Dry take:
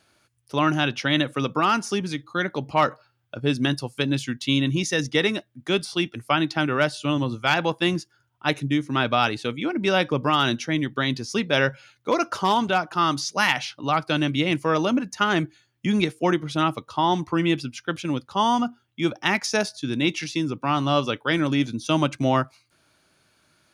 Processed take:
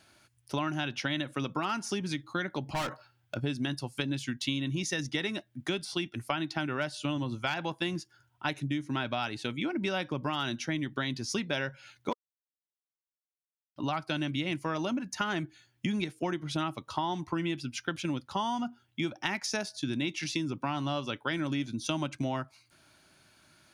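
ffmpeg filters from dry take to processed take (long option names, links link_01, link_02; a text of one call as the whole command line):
ffmpeg -i in.wav -filter_complex "[0:a]asettb=1/sr,asplit=3[link_01][link_02][link_03];[link_01]atrim=end=2.644[link_04];[link_02]atrim=start=2.64:end=3.37,asetpts=PTS-STARTPTS,afade=type=in:duration=0.004:curve=qsin,afade=type=out:start_time=0.726:duration=0.004:curve=qsin,volume=27dB,asoftclip=hard,volume=-27dB[link_05];[link_03]atrim=start=3.366[link_06];[link_04][link_05]acrossfade=duration=0.004:curve1=hsin:curve2=qsin[link_07];[link_07][link_06]acrossfade=duration=0.004:curve1=qsin:curve2=hsin,asplit=3[link_08][link_09][link_10];[link_08]atrim=end=12.13,asetpts=PTS-STARTPTS,afade=type=out:start_time=12.126:duration=0.004:curve=hsin[link_11];[link_09]atrim=start=12.13:end=13.76,asetpts=PTS-STARTPTS,volume=0[link_12];[link_10]atrim=start=13.76,asetpts=PTS-STARTPTS,afade=type=in:duration=0.004:curve=hsin[link_13];[link_11][link_12][link_13]concat=n=3:v=0:a=1,equalizer=frequency=470:width=5.7:gain=-8.5,bandreject=frequency=1200:width=13,acompressor=threshold=-31dB:ratio=6,volume=1.5dB" out.wav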